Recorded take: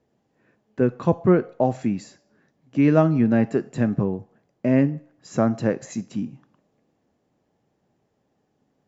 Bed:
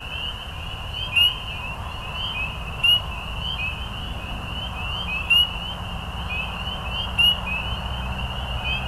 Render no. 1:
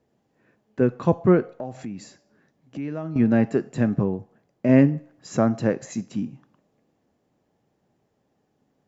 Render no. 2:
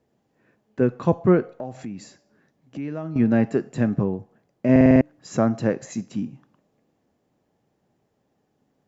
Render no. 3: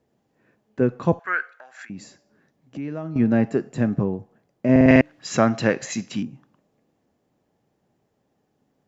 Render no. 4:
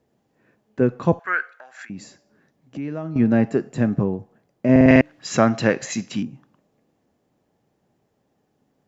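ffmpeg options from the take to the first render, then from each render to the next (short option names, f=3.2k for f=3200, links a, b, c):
-filter_complex "[0:a]asettb=1/sr,asplit=3[a][b][c];[a]atrim=end=1.514[d];[b]atrim=start=1.51:end=3.16,asetpts=PTS-STARTPTS,afade=t=in:d=0.004:c=qsin,afade=t=out:st=1.646:d=0.004:c=qsin,acompressor=threshold=-34dB:ratio=2.5:attack=3.2:release=140:knee=1:detection=peak[e];[c]atrim=start=3.156[f];[d][e]acrossfade=d=0.004:c1=hsin:c2=qsin[g];[g][f]acrossfade=d=0.004:c1=qsin:c2=hsin,asplit=3[h][i][j];[h]atrim=end=4.692[k];[i]atrim=start=4.688:end=5.372,asetpts=PTS-STARTPTS,volume=3dB[l];[j]atrim=start=5.368[m];[k][l]acrossfade=d=0.004:c1=hsin:c2=hsin[n];[n][m]acrossfade=d=0.004:c1=hsin:c2=hsin"
-filter_complex "[0:a]asplit=7[a][b][c][d][e][f][g];[a]atrim=end=4.762[h];[b]atrim=start=4.708:end=4.762[i];[c]atrim=start=4.708:end=4.762[j];[d]atrim=start=4.708:end=4.762[k];[e]atrim=start=4.708:end=4.762[l];[f]atrim=start=4.708:end=4.762[m];[g]atrim=start=5.008[n];[h][i]acrossfade=d=0.004:c1=hsin:c2=hsin[o];[o][j]acrossfade=d=0.004:c1=hsin:c2=hsin[p];[p][k]acrossfade=d=0.004:c1=hsin:c2=hsin[q];[q][l]acrossfade=d=0.004:c1=hsin:c2=hsin[r];[r][m]acrossfade=d=0.004:c1=hsin:c2=hsin[s];[s][n]acrossfade=d=0.004:c1=hsin:c2=hsin"
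-filter_complex "[0:a]asettb=1/sr,asplit=3[a][b][c];[a]atrim=end=1.194[d];[b]atrim=start=1.19:end=1.9,asetpts=PTS-STARTPTS,afade=t=in:d=0.004:c=qsin,afade=t=out:st=0.706:d=0.004:c=qsin,highpass=f=1.6k:t=q:w=6.8[e];[c]atrim=start=1.896[f];[d][e]acrossfade=d=0.004:c1=hsin:c2=qsin[g];[g][f]acrossfade=d=0.004:c1=qsin:c2=hsin,asettb=1/sr,asplit=3[h][i][j];[h]atrim=end=4.884[k];[i]atrim=start=4.88:end=6.23,asetpts=PTS-STARTPTS,afade=t=in:d=0.004:c=qsin,afade=t=out:st=1.346:d=0.004:c=qsin,equalizer=f=3k:w=0.44:g=13[l];[j]atrim=start=6.226[m];[k][l]acrossfade=d=0.004:c1=hsin:c2=qsin[n];[n][m]acrossfade=d=0.004:c1=qsin:c2=hsin"
-af "volume=1.5dB,alimiter=limit=-1dB:level=0:latency=1"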